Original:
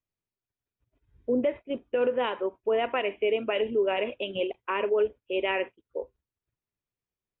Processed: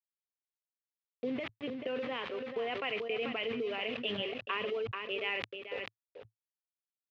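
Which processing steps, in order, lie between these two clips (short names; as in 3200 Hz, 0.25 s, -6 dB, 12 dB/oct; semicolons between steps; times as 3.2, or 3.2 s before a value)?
compressor 6:1, threshold -30 dBFS, peak gain reduction 9.5 dB; sample gate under -42 dBFS; high shelf 2100 Hz +9 dB; echo 0.455 s -11 dB; speed mistake 24 fps film run at 25 fps; speaker cabinet 110–2900 Hz, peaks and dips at 110 Hz +7 dB, 350 Hz -9 dB, 600 Hz -10 dB, 940 Hz -7 dB, 1500 Hz -7 dB; sustainer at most 37 dB/s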